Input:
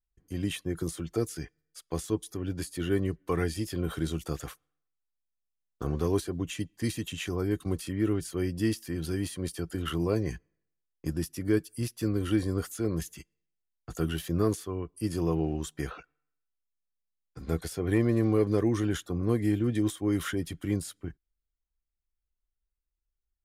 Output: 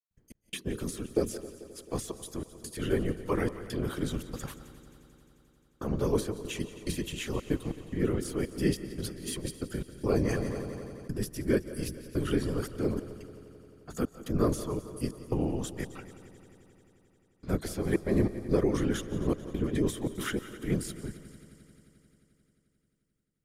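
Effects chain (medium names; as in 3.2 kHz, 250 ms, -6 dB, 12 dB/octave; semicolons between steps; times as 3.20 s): hum notches 60/120/180/240/300/360 Hz; 9.04–9.45 s: compressor with a negative ratio -37 dBFS, ratio -0.5; whisper effect; trance gate ".xx..xxxxx" 142 bpm -60 dB; multi-head delay 88 ms, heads second and third, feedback 65%, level -17.5 dB; on a send at -18 dB: reverberation RT60 0.50 s, pre-delay 110 ms; 10.01–11.12 s: on the sum: decay stretcher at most 23 dB/s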